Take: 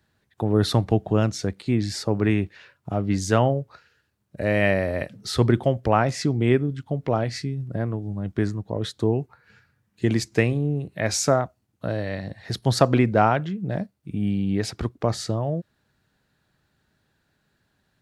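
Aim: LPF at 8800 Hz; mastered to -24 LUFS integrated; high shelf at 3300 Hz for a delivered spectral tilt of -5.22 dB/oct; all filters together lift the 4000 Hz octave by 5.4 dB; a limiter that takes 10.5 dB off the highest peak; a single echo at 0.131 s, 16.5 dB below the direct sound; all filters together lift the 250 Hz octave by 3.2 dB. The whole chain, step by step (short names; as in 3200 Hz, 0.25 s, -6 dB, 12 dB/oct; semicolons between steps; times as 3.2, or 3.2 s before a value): LPF 8800 Hz; bell 250 Hz +4 dB; high shelf 3300 Hz +5 dB; bell 4000 Hz +3 dB; limiter -10.5 dBFS; echo 0.131 s -16.5 dB; gain +0.5 dB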